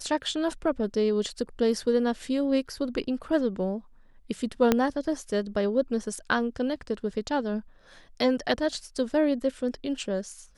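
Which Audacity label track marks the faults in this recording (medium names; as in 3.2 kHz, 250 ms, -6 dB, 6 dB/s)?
4.720000	4.720000	pop -7 dBFS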